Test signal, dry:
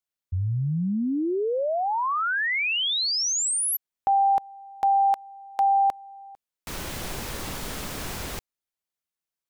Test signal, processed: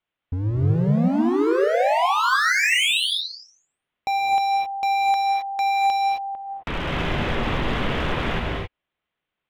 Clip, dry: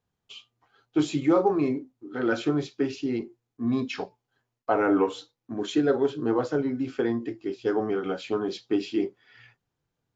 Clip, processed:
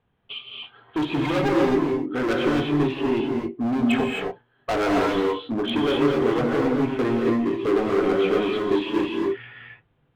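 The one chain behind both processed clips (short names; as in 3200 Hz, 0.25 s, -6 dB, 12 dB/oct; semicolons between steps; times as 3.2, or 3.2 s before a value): steep low-pass 3400 Hz 48 dB/oct; in parallel at 0 dB: compressor 5:1, threshold -37 dBFS; on the sum: hard clip -26.5 dBFS; non-linear reverb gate 0.29 s rising, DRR 0 dB; gain +5 dB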